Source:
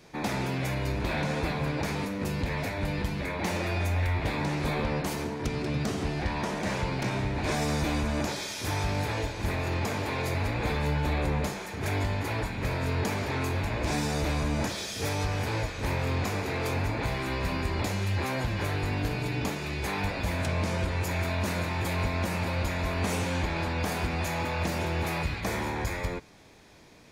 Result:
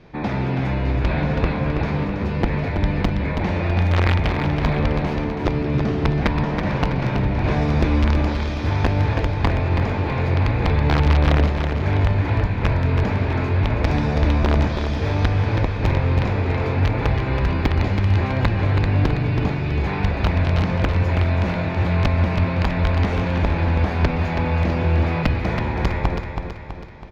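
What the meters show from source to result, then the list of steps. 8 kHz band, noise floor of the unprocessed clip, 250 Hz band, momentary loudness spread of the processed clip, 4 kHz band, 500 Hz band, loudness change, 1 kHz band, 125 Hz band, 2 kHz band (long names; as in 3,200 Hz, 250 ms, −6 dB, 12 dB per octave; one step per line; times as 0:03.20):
can't be measured, −37 dBFS, +9.0 dB, 4 LU, +2.5 dB, +7.0 dB, +9.5 dB, +6.5 dB, +11.5 dB, +5.0 dB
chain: low-shelf EQ 130 Hz +9 dB
wrap-around overflow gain 15.5 dB
high-frequency loss of the air 270 metres
repeating echo 326 ms, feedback 50%, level −6.5 dB
level +5.5 dB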